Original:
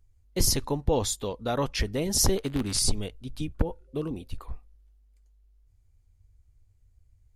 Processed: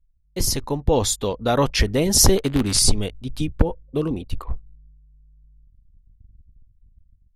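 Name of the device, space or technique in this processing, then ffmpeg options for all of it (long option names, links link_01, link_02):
voice memo with heavy noise removal: -af "anlmdn=0.00398,dynaudnorm=framelen=330:gausssize=5:maxgain=11dB"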